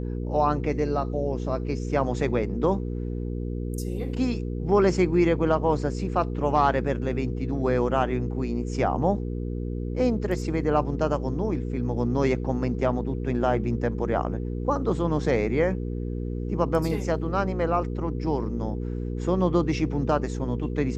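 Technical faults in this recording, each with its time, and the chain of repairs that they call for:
hum 60 Hz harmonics 8 -30 dBFS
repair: de-hum 60 Hz, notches 8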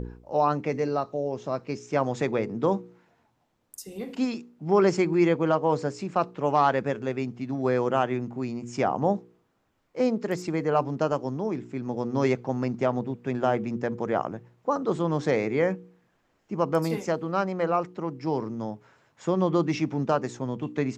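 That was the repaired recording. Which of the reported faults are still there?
nothing left

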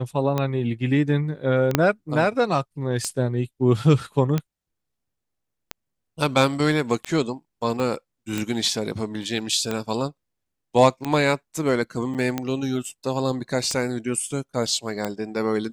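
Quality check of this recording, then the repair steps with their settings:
tick 45 rpm -11 dBFS
1.75 s: pop -2 dBFS
7.80 s: pop -16 dBFS
12.14–12.15 s: dropout 7.8 ms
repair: de-click; interpolate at 12.14 s, 7.8 ms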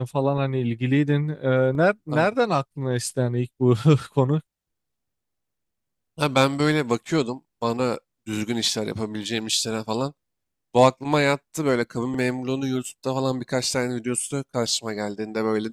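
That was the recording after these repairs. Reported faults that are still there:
1.75 s: pop
7.80 s: pop

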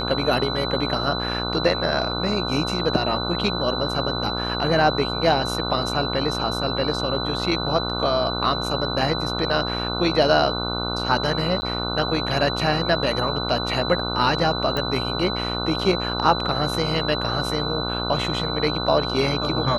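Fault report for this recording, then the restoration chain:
buzz 60 Hz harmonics 25 -28 dBFS
whine 4 kHz -28 dBFS
11.61–11.62 s: dropout 10 ms
14.77 s: pop -12 dBFS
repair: de-click; de-hum 60 Hz, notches 25; band-stop 4 kHz, Q 30; interpolate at 11.61 s, 10 ms

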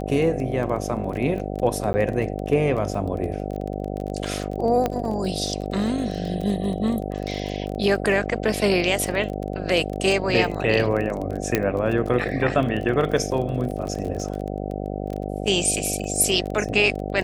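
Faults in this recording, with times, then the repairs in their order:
buzz 50 Hz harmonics 15 -29 dBFS
crackle 22 per s -28 dBFS
1.93–1.94 s: dropout 10 ms
4.86 s: pop -10 dBFS
11.55 s: pop -5 dBFS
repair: de-click; de-hum 50 Hz, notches 15; interpolate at 1.93 s, 10 ms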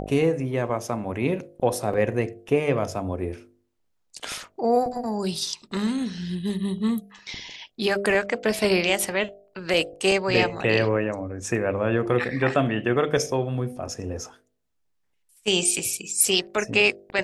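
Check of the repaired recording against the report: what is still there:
11.55 s: pop

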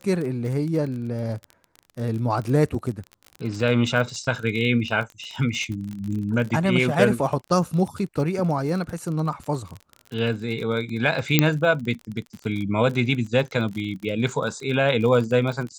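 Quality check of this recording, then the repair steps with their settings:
crackle 30 per s -29 dBFS
11.39 s: pop -1 dBFS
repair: de-click

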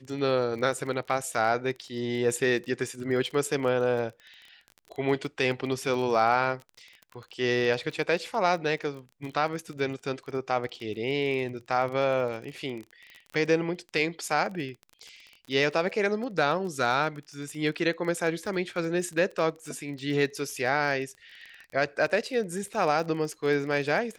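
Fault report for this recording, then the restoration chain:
crackle 26 per s -35 dBFS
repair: de-click

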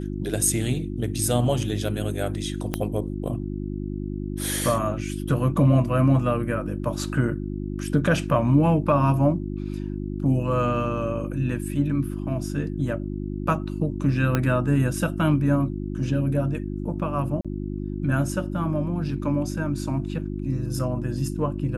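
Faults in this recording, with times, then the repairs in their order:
hum 50 Hz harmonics 7 -30 dBFS
2.74 s: pop -10 dBFS
14.35 s: pop -9 dBFS
17.41–17.45 s: dropout 36 ms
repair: de-click; de-hum 50 Hz, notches 7; interpolate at 17.41 s, 36 ms

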